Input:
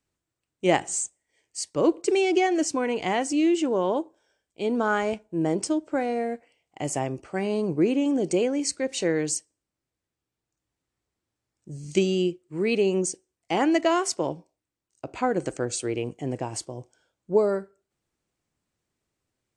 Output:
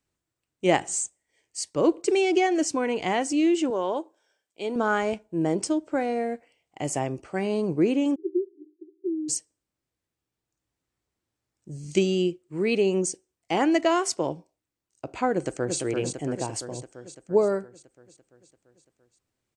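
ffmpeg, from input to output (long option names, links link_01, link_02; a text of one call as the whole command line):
ffmpeg -i in.wav -filter_complex "[0:a]asettb=1/sr,asplit=3[link_01][link_02][link_03];[link_01]atrim=end=3.704[link_04];[link_02]atrim=start=3.7:end=4.76,asetpts=PTS-STARTPTS,afade=type=in:duration=0.004:curve=qsin,afade=type=out:start_time=1.056:duration=0.004:curve=qsin,highpass=frequency=470:poles=1[link_05];[link_03]atrim=start=4.756[link_06];[link_04][link_05]acrossfade=duration=0.004:curve1=hsin:curve2=qsin[link_07];[link_07][link_06]acrossfade=duration=0.004:curve1=qsin:curve2=hsin,asplit=3[link_08][link_09][link_10];[link_08]afade=type=out:start_time=8.14:duration=0.02[link_11];[link_09]asuperpass=centerf=350:order=20:qfactor=3.6,afade=type=in:start_time=8.14:duration=0.02,afade=type=out:start_time=9.28:duration=0.02[link_12];[link_10]afade=type=in:start_time=9.28:duration=0.02[link_13];[link_11][link_12][link_13]amix=inputs=3:normalize=0,asplit=2[link_14][link_15];[link_15]afade=type=in:start_time=15.33:duration=0.01,afade=type=out:start_time=15.78:duration=0.01,aecho=0:1:340|680|1020|1360|1700|2040|2380|2720|3060|3400:0.595662|0.38718|0.251667|0.163584|0.106329|0.0691141|0.0449242|0.0292007|0.0189805|0.0123373[link_16];[link_14][link_16]amix=inputs=2:normalize=0" out.wav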